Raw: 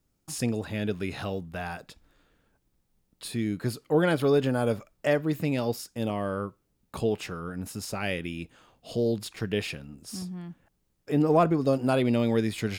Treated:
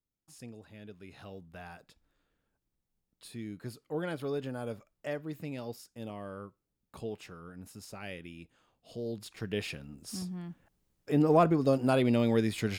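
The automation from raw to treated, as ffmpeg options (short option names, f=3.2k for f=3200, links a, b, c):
-af "volume=-2dB,afade=t=in:st=1:d=0.54:silence=0.446684,afade=t=in:st=9.01:d=1.05:silence=0.316228"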